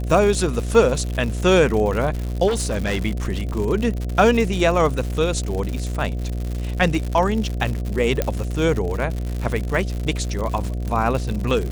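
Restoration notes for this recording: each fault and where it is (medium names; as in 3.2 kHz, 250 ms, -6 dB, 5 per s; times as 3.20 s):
buzz 60 Hz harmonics 12 -25 dBFS
crackle 130 per s -25 dBFS
2.47–3.05 s: clipped -18 dBFS
3.53 s: dropout 4.4 ms
8.22 s: pop -6 dBFS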